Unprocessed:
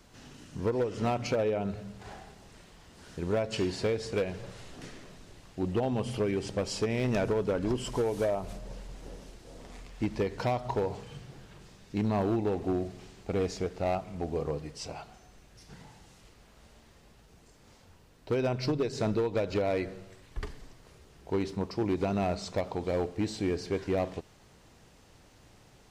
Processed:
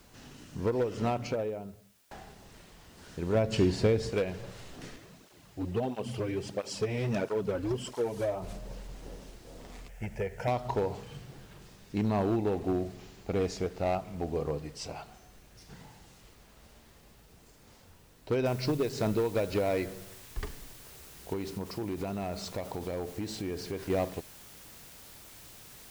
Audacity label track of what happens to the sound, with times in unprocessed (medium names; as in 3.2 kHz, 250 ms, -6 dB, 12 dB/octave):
0.900000	2.110000	studio fade out
3.350000	4.100000	bass shelf 330 Hz +9 dB
4.960000	8.420000	cancelling through-zero flanger nulls at 1.5 Hz, depth 5.6 ms
9.880000	10.480000	static phaser centre 1.1 kHz, stages 6
12.950000	13.350000	brick-wall FIR low-pass 7.7 kHz
18.460000	18.460000	noise floor step -67 dB -52 dB
21.330000	23.900000	compression, threshold -31 dBFS